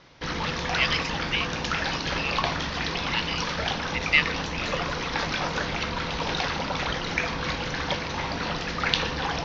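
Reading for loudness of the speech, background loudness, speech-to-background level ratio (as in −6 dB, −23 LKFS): −29.5 LKFS, −28.0 LKFS, −1.5 dB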